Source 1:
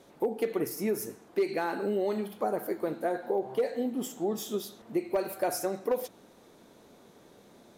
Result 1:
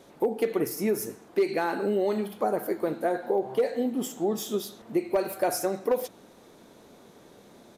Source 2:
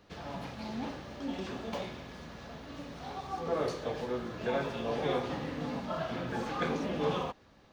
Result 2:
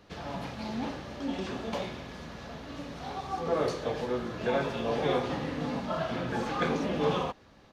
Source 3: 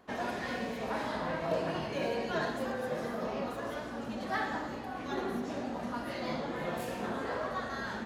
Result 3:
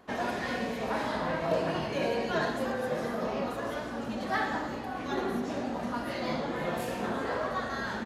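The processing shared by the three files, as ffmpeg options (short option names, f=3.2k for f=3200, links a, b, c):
-af "aresample=32000,aresample=44100,volume=3.5dB"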